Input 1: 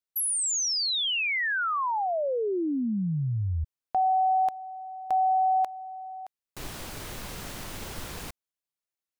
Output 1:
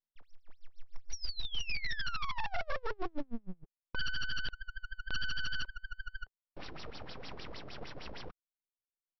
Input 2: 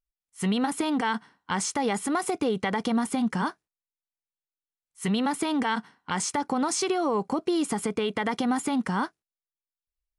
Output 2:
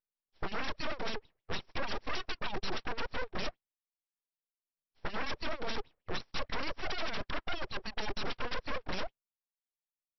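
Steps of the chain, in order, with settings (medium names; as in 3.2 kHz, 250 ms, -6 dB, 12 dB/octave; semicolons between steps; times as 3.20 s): LFO band-pass sine 6.5 Hz 200–2400 Hz; integer overflow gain 32.5 dB; reverb removal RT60 1.1 s; full-wave rectifier; brick-wall FIR low-pass 5.8 kHz; trim +8 dB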